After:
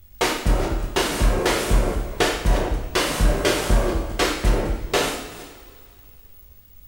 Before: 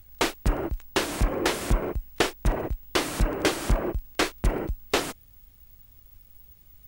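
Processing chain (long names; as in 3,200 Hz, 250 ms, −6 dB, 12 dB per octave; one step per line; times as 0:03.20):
delay that plays each chunk backwards 217 ms, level −13 dB
coupled-rooms reverb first 0.71 s, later 2.6 s, from −17 dB, DRR −3.5 dB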